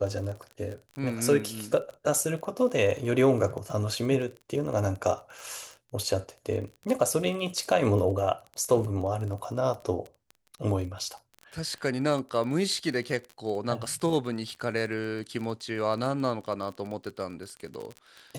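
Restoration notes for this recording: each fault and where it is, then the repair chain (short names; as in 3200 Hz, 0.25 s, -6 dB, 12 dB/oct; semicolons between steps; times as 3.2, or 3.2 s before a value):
crackle 25/s -34 dBFS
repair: de-click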